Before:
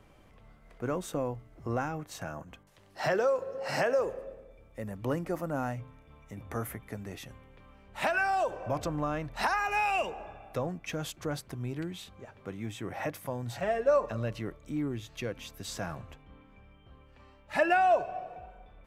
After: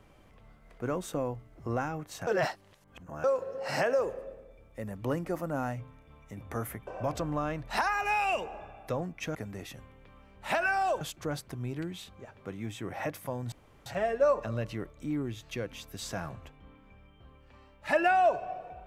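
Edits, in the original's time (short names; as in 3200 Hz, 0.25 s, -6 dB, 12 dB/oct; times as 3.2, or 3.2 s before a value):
2.27–3.24 reverse
6.87–8.53 move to 11.01
13.52 insert room tone 0.34 s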